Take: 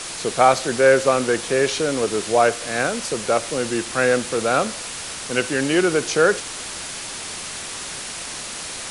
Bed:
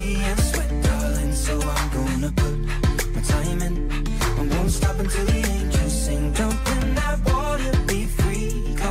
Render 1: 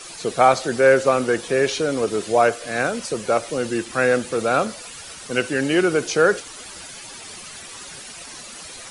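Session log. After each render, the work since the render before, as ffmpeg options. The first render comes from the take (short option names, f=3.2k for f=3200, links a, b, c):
-af "afftdn=nr=11:nf=-32"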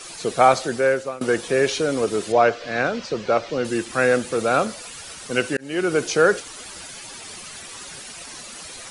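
-filter_complex "[0:a]asettb=1/sr,asplit=3[a][b][c];[a]atrim=end=2.324[d];[b]atrim=start=2.32:end=3.65,asetpts=PTS-STARTPTS,afade=t=in:d=0.004:c=qsin,afade=t=out:st=1.326:d=0.004:c=qsin,lowpass=f=5.3k:w=0.5412,lowpass=f=5.3k:w=1.3066[e];[c]atrim=start=3.646[f];[d][e]acrossfade=d=0.004:c1=hsin:c2=qsin[g];[g][f]acrossfade=d=0.004:c1=qsin:c2=hsin,asplit=3[h][i][j];[h]atrim=end=1.21,asetpts=PTS-STARTPTS,afade=t=out:st=0.58:d=0.63:silence=0.0944061[k];[i]atrim=start=1.21:end=5.57,asetpts=PTS-STARTPTS,afade=t=in:d=0.004:c=hsin:silence=0.0944061,afade=t=out:st=4.356:d=0.004:c=hsin[l];[j]atrim=start=5.57,asetpts=PTS-STARTPTS,afade=t=in:d=0.41[m];[k][l][m]concat=n=3:v=0:a=1"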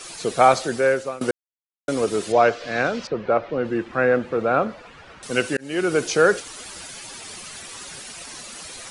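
-filter_complex "[0:a]asettb=1/sr,asplit=3[a][b][c];[a]atrim=end=3.074[d];[b]atrim=start=3.07:end=5.23,asetpts=PTS-STARTPTS,afade=t=in:d=0.004:c=qsin,afade=t=out:st=2.156:d=0.004:c=qsin,lowpass=1.9k[e];[c]atrim=start=5.226[f];[d][e]acrossfade=d=0.004:c1=hsin:c2=qsin[g];[g][f]acrossfade=d=0.004:c1=qsin:c2=hsin,asplit=3[h][i][j];[h]atrim=end=1.31,asetpts=PTS-STARTPTS,afade=t=out:st=1.306:d=0.004:c=hsin[k];[i]atrim=start=1.31:end=1.88,asetpts=PTS-STARTPTS,volume=0[l];[j]atrim=start=1.88,asetpts=PTS-STARTPTS,afade=t=in:d=0.004:c=hsin[m];[k][l][m]concat=n=3:v=0:a=1"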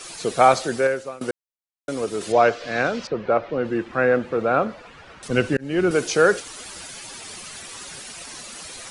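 -filter_complex "[0:a]asettb=1/sr,asplit=3[a][b][c];[a]atrim=end=5.284[d];[b]atrim=start=5.28:end=5.91,asetpts=PTS-STARTPTS,afade=t=in:d=0.004:c=qsin,afade=t=out:st=0.626:d=0.004:c=qsin,aemphasis=mode=reproduction:type=bsi[e];[c]atrim=start=5.906[f];[d][e]acrossfade=d=0.004:c1=hsin:c2=qsin[g];[g][f]acrossfade=d=0.004:c1=qsin:c2=hsin,asplit=3[h][i][j];[h]atrim=end=0.872[k];[i]atrim=start=0.868:end=2.212,asetpts=PTS-STARTPTS,volume=-4dB[l];[j]atrim=start=2.208[m];[k][l]acrossfade=d=0.004:c1=hsin:c2=hsin[n];[n][m]acrossfade=d=0.004:c1=hsin:c2=hsin"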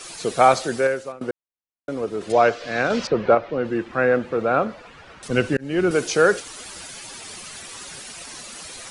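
-filter_complex "[0:a]asettb=1/sr,asplit=3[a][b][c];[a]atrim=end=1.124[d];[b]atrim=start=1.12:end=2.3,asetpts=PTS-STARTPTS,afade=t=in:d=0.004:c=qsin,afade=t=out:st=1.176:d=0.004:c=qsin,lowpass=f=1.6k:p=1[e];[c]atrim=start=2.296[f];[d][e]acrossfade=d=0.004:c1=hsin:c2=qsin[g];[g][f]acrossfade=d=0.004:c1=qsin:c2=hsin,asettb=1/sr,asplit=3[h][i][j];[h]atrim=end=2.904[k];[i]atrim=start=2.9:end=3.35,asetpts=PTS-STARTPTS,afade=t=in:d=0.004:c=qsin,afade=t=out:st=0.446:d=0.004:c=qsin,acontrast=38[l];[j]atrim=start=3.346[m];[k][l]acrossfade=d=0.004:c1=hsin:c2=qsin[n];[n][m]acrossfade=d=0.004:c1=qsin:c2=hsin"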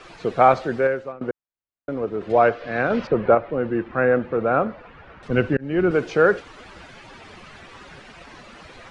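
-af "lowpass=2.2k,lowshelf=f=110:g=5.5"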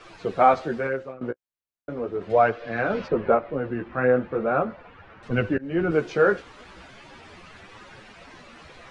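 -af "flanger=delay=8.5:depth=8.5:regen=-8:speed=0.38:shape=triangular"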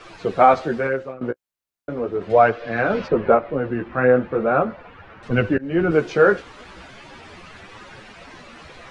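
-af "volume=4.5dB,alimiter=limit=-2dB:level=0:latency=1"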